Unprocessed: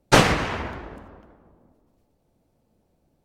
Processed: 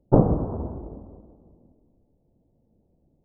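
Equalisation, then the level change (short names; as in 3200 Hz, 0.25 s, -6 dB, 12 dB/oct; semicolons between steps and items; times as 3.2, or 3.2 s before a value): Gaussian blur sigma 13 samples; +3.0 dB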